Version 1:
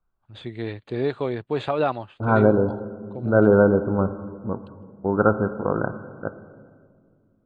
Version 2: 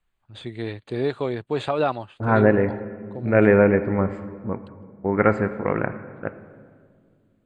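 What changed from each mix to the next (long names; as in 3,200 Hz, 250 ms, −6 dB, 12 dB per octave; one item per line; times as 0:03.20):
first voice: remove high-frequency loss of the air 81 metres
second voice: remove linear-phase brick-wall low-pass 1,600 Hz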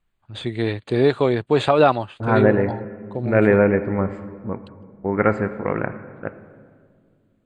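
first voice +7.5 dB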